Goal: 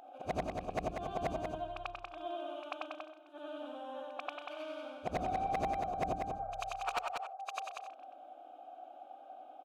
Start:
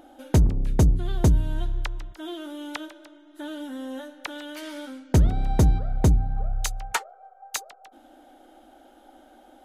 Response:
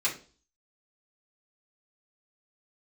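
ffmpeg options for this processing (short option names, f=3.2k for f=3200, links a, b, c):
-filter_complex "[0:a]afftfilt=real='re':imag='-im':win_size=8192:overlap=0.75,asplit=3[a][b][c];[a]bandpass=f=730:t=q:w=8,volume=0dB[d];[b]bandpass=f=1.09k:t=q:w=8,volume=-6dB[e];[c]bandpass=f=2.44k:t=q:w=8,volume=-9dB[f];[d][e][f]amix=inputs=3:normalize=0,aeval=exprs='0.0158*(abs(mod(val(0)/0.0158+3,4)-2)-1)':c=same,aecho=1:1:189:0.562,volume=10.5dB"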